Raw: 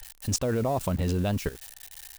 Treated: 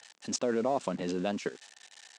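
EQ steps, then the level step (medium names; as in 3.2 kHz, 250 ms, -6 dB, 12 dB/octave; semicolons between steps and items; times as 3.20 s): high-pass 210 Hz 24 dB/octave; resonant low-pass 7.8 kHz, resonance Q 2.3; distance through air 130 m; -1.0 dB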